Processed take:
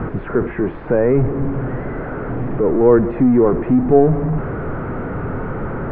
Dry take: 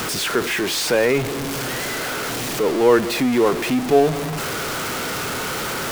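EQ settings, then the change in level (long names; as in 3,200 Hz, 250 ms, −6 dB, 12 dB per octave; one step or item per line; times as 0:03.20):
low-pass filter 1,800 Hz 24 dB per octave
high-frequency loss of the air 90 metres
spectral tilt −4 dB per octave
−1.5 dB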